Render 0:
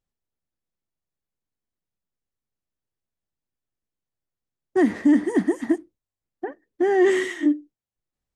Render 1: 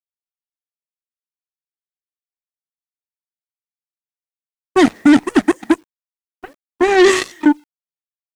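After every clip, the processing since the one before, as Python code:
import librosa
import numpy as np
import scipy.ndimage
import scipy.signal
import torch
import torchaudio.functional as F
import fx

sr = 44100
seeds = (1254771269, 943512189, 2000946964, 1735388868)

y = fx.cheby_harmonics(x, sr, harmonics=(7,), levels_db=(-15,), full_scale_db=-9.0)
y = fx.dynamic_eq(y, sr, hz=6600.0, q=0.71, threshold_db=-45.0, ratio=4.0, max_db=7)
y = fx.quant_dither(y, sr, seeds[0], bits=10, dither='none')
y = y * 10.0 ** (6.5 / 20.0)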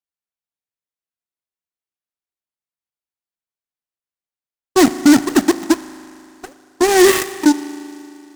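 y = fx.rev_spring(x, sr, rt60_s=2.7, pass_ms=(38,), chirp_ms=40, drr_db=13.0)
y = fx.noise_mod_delay(y, sr, seeds[1], noise_hz=5400.0, depth_ms=0.06)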